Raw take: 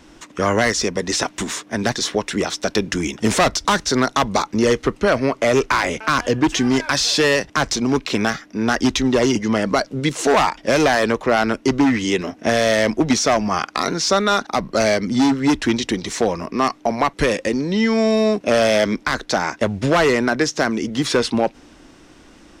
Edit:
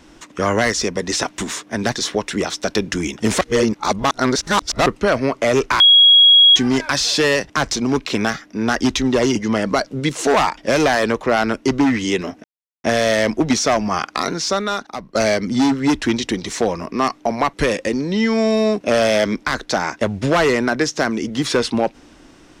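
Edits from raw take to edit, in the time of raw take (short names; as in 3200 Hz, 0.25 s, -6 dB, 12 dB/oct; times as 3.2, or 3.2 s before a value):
3.41–4.86 reverse
5.8–6.56 bleep 3310 Hz -6 dBFS
12.44 insert silence 0.40 s
13.79–14.75 fade out, to -13 dB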